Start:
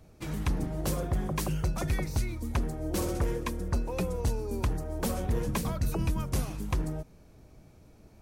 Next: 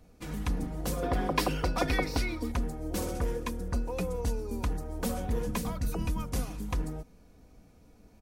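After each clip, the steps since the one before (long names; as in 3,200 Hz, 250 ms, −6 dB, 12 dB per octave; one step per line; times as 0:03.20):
gain on a spectral selection 0:01.03–0:02.51, 240–5,700 Hz +9 dB
comb filter 4.1 ms, depth 44%
level −2.5 dB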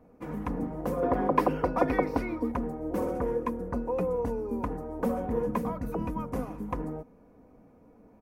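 octave-band graphic EQ 125/250/500/1,000/2,000/4,000/8,000 Hz +5/+11/+11/+12/+5/−9/−6 dB
level −9 dB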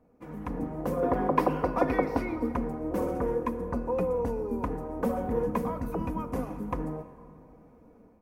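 automatic gain control gain up to 7 dB
dense smooth reverb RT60 2.7 s, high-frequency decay 0.65×, DRR 11.5 dB
level −6.5 dB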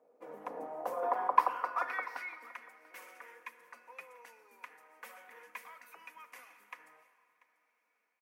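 high-pass filter sweep 520 Hz → 2,100 Hz, 0:00.29–0:02.62
single-tap delay 689 ms −21.5 dB
level −5.5 dB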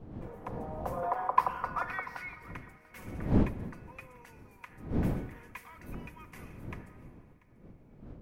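wind on the microphone 230 Hz −38 dBFS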